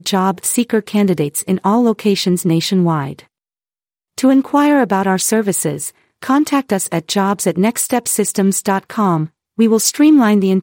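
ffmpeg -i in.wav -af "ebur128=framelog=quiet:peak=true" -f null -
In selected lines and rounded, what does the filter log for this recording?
Integrated loudness:
  I:         -14.8 LUFS
  Threshold: -25.1 LUFS
Loudness range:
  LRA:         2.0 LU
  Threshold: -35.8 LUFS
  LRA low:   -16.5 LUFS
  LRA high:  -14.5 LUFS
True peak:
  Peak:       -0.7 dBFS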